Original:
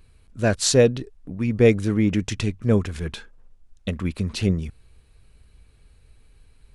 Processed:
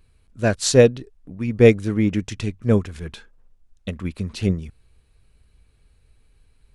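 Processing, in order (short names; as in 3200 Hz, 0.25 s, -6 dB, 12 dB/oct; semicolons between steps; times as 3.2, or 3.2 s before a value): upward expander 1.5:1, over -27 dBFS; gain +4 dB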